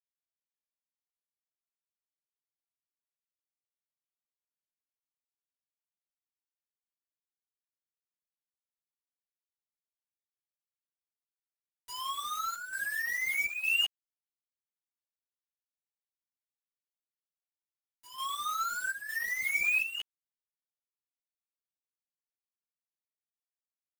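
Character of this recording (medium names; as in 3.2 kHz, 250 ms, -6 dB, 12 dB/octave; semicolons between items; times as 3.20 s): a quantiser's noise floor 6-bit, dither none; chopped level 1.1 Hz, depth 65%, duty 80%; a shimmering, thickened sound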